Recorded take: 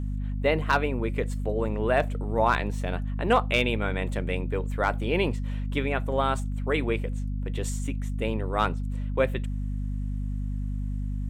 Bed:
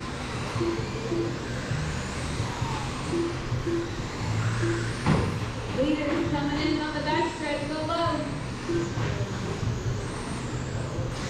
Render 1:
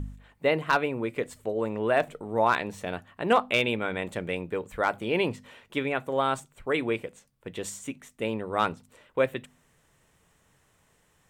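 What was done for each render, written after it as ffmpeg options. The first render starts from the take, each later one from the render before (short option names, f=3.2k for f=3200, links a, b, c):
-af "bandreject=f=50:t=h:w=4,bandreject=f=100:t=h:w=4,bandreject=f=150:t=h:w=4,bandreject=f=200:t=h:w=4,bandreject=f=250:t=h:w=4"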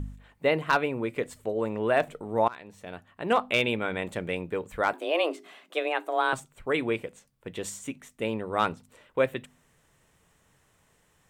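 -filter_complex "[0:a]asettb=1/sr,asplit=3[a][b][c];[a]atrim=end=4.934[d];[b]atrim=start=4.93:end=6.33,asetpts=PTS-STARTPTS,afade=t=in:d=0.004:c=qsin,afade=t=out:st=1.396:d=0.004:c=qsin,afreqshift=160[e];[c]atrim=start=6.326[f];[d][e]acrossfade=d=0.004:c1=hsin:c2=qsin[g];[g][f]acrossfade=d=0.004:c1=qsin:c2=hsin,asplit=2[h][i];[h]atrim=end=2.48,asetpts=PTS-STARTPTS,afade=t=out:st=2.476:d=0.004:c=hsin:silence=0.0794328[j];[i]atrim=start=2.48,asetpts=PTS-STARTPTS,afade=t=in:d=1.13:silence=0.0794328[k];[j][k]concat=n=2:v=0:a=1"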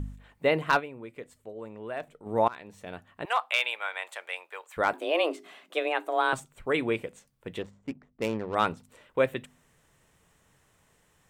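-filter_complex "[0:a]asettb=1/sr,asplit=3[a][b][c];[a]atrim=end=3.254[d];[b]atrim=start=3.25:end=4.77,asetpts=PTS-STARTPTS,afade=t=in:d=0.004:c=qsin,afade=t=out:st=1.516:d=0.004:c=qsin,highpass=f=750:w=0.5412,highpass=f=750:w=1.3066[e];[c]atrim=start=4.766[f];[d][e]acrossfade=d=0.004:c1=hsin:c2=qsin[g];[g][f]acrossfade=d=0.004:c1=qsin:c2=hsin,asettb=1/sr,asplit=3[h][i][j];[h]atrim=end=7.624[k];[i]atrim=start=7.62:end=8.55,asetpts=PTS-STARTPTS,afade=t=in:d=0.004:c=qsin,afade=t=out:st=0.926:d=0.004:c=qsin,adynamicsmooth=sensitivity=6.5:basefreq=520[l];[j]atrim=start=8.546[m];[k][l]acrossfade=d=0.004:c1=hsin:c2=qsin[n];[n][m]acrossfade=d=0.004:c1=qsin:c2=hsin,asplit=3[o][p][q];[o]atrim=end=0.95,asetpts=PTS-STARTPTS,afade=t=out:st=0.79:d=0.16:c=exp:silence=0.251189[r];[p]atrim=start=0.95:end=2.11,asetpts=PTS-STARTPTS,volume=-12dB[s];[q]atrim=start=2.11,asetpts=PTS-STARTPTS,afade=t=in:d=0.16:c=exp:silence=0.251189[t];[r][s][t]concat=n=3:v=0:a=1"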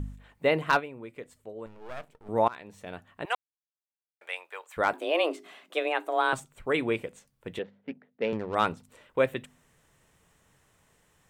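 -filter_complex "[0:a]asettb=1/sr,asplit=3[a][b][c];[a]atrim=end=1.664[d];[b]atrim=start=1.66:end=2.29,asetpts=PTS-STARTPTS,afade=t=in:d=0.004:c=qsin,afade=t=out:st=0.626:d=0.004:c=qsin,aeval=exprs='max(val(0),0)':c=same[e];[c]atrim=start=2.286[f];[d][e]acrossfade=d=0.004:c1=hsin:c2=qsin[g];[g][f]acrossfade=d=0.004:c1=qsin:c2=hsin,asettb=1/sr,asplit=3[h][i][j];[h]atrim=end=7.594[k];[i]atrim=start=7.59:end=8.33,asetpts=PTS-STARTPTS,afade=t=in:d=0.004:c=qsin,afade=t=out:st=0.736:d=0.004:c=qsin,highpass=f=140:w=0.5412,highpass=f=140:w=1.3066,equalizer=f=140:t=q:w=4:g=-8,equalizer=f=320:t=q:w=4:g=-6,equalizer=f=480:t=q:w=4:g=5,equalizer=f=1.1k:t=q:w=4:g=-9,equalizer=f=1.7k:t=q:w=4:g=4,lowpass=f=3.7k:w=0.5412,lowpass=f=3.7k:w=1.3066[l];[j]atrim=start=8.326[m];[k][l]acrossfade=d=0.004:c1=hsin:c2=qsin[n];[n][m]acrossfade=d=0.004:c1=qsin:c2=hsin,asplit=3[o][p][q];[o]atrim=end=3.35,asetpts=PTS-STARTPTS,afade=t=out:st=3.346:d=0.004:c=hsin[r];[p]atrim=start=3.35:end=4.21,asetpts=PTS-STARTPTS,volume=0[s];[q]atrim=start=4.21,asetpts=PTS-STARTPTS,afade=t=in:d=0.004:c=hsin[t];[r][s][t]concat=n=3:v=0:a=1"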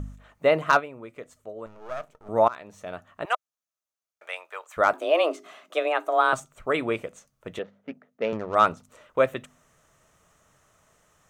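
-af "equalizer=f=630:t=o:w=0.33:g=9,equalizer=f=1.25k:t=o:w=0.33:g=10,equalizer=f=6.3k:t=o:w=0.33:g=8"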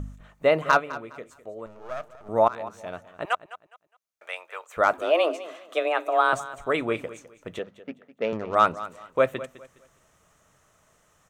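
-af "aecho=1:1:206|412|618:0.158|0.0428|0.0116"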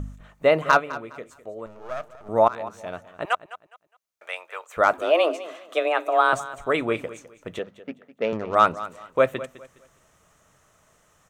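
-af "volume=2dB"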